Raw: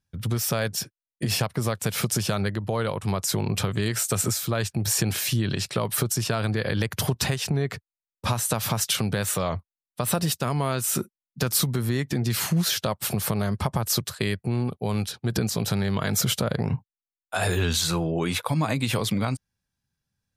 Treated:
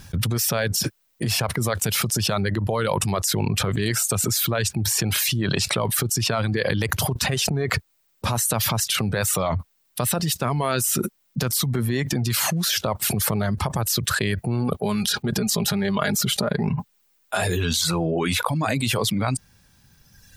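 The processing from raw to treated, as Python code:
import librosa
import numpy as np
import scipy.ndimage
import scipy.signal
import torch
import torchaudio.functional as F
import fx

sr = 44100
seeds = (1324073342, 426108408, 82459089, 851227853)

y = fx.dereverb_blind(x, sr, rt60_s=1.1)
y = fx.comb(y, sr, ms=4.9, depth=0.63, at=(14.8, 17.42))
y = fx.env_flatten(y, sr, amount_pct=100)
y = y * 10.0 ** (-3.0 / 20.0)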